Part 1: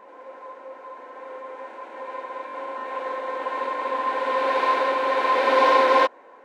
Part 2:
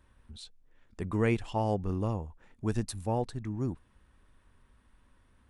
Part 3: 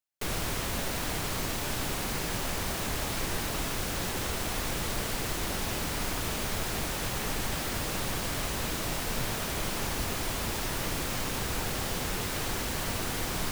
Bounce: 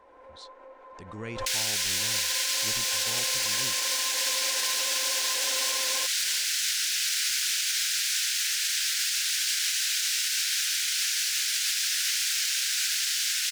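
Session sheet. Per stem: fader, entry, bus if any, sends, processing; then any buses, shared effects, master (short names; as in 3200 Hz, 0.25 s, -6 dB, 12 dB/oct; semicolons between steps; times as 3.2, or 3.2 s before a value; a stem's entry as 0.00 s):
-9.5 dB, 0.00 s, no bus, no send, compressor, threshold -28 dBFS, peak gain reduction 14 dB
-12.0 dB, 0.00 s, bus A, no send, LPF 7100 Hz
+1.0 dB, 1.25 s, bus A, no send, Chebyshev high-pass 1500 Hz, order 5
bus A: 0.0 dB, bell 5400 Hz +14 dB 2.2 oct; limiter -17.5 dBFS, peak gain reduction 4 dB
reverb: off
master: backwards sustainer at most 67 dB/s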